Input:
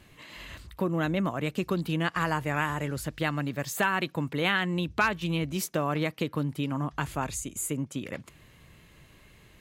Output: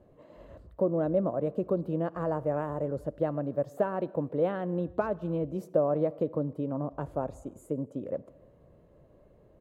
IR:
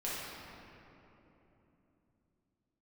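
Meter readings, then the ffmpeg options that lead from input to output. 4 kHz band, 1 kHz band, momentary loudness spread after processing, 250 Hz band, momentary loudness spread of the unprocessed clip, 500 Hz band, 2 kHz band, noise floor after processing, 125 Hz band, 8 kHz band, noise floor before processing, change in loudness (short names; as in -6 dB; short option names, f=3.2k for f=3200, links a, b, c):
under -25 dB, -6.0 dB, 8 LU, -2.0 dB, 9 LU, +5.0 dB, -18.0 dB, -59 dBFS, -4.0 dB, under -25 dB, -57 dBFS, -1.5 dB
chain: -filter_complex "[0:a]firequalizer=gain_entry='entry(120,0);entry(390,6);entry(560,14);entry(820,0);entry(2200,-21)':delay=0.05:min_phase=1,asplit=2[a][b];[1:a]atrim=start_sample=2205,afade=t=out:st=0.33:d=0.01,atrim=end_sample=14994,adelay=52[c];[b][c]afir=irnorm=-1:irlink=0,volume=-24dB[d];[a][d]amix=inputs=2:normalize=0,volume=-5dB"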